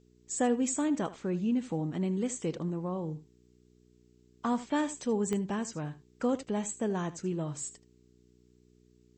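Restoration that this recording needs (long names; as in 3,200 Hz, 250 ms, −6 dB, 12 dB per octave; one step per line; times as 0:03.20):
click removal
hum removal 60.8 Hz, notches 7
downward expander −56 dBFS, range −21 dB
echo removal 78 ms −16 dB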